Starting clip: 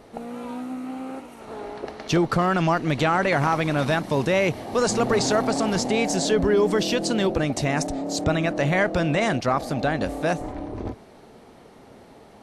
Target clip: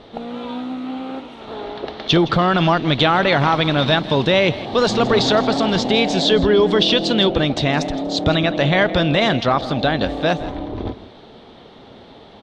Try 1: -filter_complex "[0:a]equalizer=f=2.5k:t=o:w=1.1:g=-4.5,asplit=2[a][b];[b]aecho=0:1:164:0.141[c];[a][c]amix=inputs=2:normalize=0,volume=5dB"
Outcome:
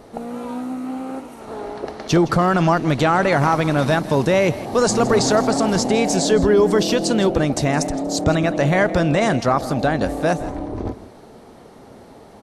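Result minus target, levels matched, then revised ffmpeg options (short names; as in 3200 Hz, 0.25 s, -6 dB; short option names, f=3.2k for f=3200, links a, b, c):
4000 Hz band -8.0 dB
-filter_complex "[0:a]lowpass=f=3.5k:t=q:w=5.3,equalizer=f=2.5k:t=o:w=1.1:g=-4.5,asplit=2[a][b];[b]aecho=0:1:164:0.141[c];[a][c]amix=inputs=2:normalize=0,volume=5dB"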